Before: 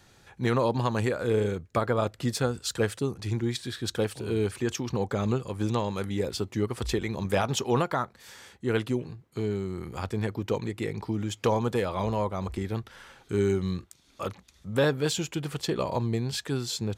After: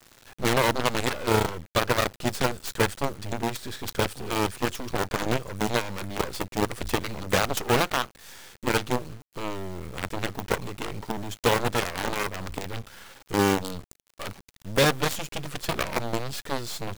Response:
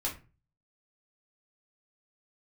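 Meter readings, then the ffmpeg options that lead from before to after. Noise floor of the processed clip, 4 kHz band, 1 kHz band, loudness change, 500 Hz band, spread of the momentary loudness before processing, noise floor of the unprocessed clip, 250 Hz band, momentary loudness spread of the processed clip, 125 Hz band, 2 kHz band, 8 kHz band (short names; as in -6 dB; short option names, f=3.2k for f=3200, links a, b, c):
-63 dBFS, +5.0 dB, +5.0 dB, +1.5 dB, 0.0 dB, 7 LU, -61 dBFS, -1.0 dB, 13 LU, -2.5 dB, +7.5 dB, +4.0 dB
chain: -af "aeval=exprs='0.211*(cos(1*acos(clip(val(0)/0.211,-1,1)))-cos(1*PI/2))+0.0841*(cos(7*acos(clip(val(0)/0.211,-1,1)))-cos(7*PI/2))':c=same,acrusher=bits=5:dc=4:mix=0:aa=0.000001,volume=1dB"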